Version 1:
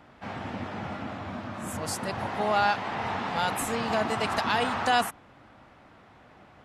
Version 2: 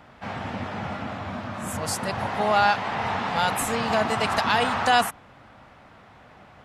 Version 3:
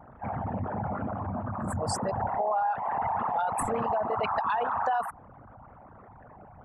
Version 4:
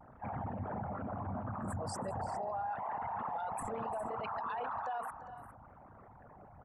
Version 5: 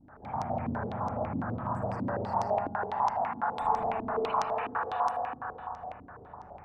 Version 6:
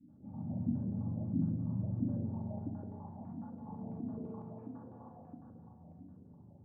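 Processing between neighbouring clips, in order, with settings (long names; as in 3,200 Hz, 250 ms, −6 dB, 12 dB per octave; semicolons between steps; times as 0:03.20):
parametric band 320 Hz −5 dB 0.68 octaves; level +4.5 dB
spectral envelope exaggerated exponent 3; downward compressor 5 to 1, threshold −25 dBFS, peak gain reduction 9 dB
brickwall limiter −25.5 dBFS, peak gain reduction 9 dB; on a send: multi-tap delay 341/404 ms −16/−13.5 dB; on the sum: pitch vibrato 0.74 Hz 30 cents; level −6 dB
flutter between parallel walls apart 10.4 metres, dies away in 0.4 s; spring reverb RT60 2.8 s, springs 36/43 ms, chirp 60 ms, DRR −6 dB; low-pass on a step sequencer 12 Hz 280–5,700 Hz; level −3 dB
flat-topped band-pass 170 Hz, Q 1.1; rectangular room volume 3,200 cubic metres, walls furnished, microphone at 2.4 metres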